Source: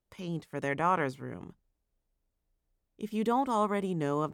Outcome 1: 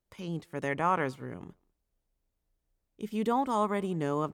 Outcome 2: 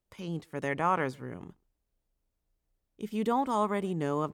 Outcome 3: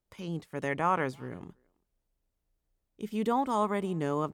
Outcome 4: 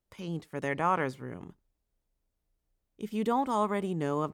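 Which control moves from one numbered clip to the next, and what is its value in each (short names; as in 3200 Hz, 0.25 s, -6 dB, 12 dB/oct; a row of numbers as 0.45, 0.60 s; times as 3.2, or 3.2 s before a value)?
speakerphone echo, time: 200, 130, 330, 90 ms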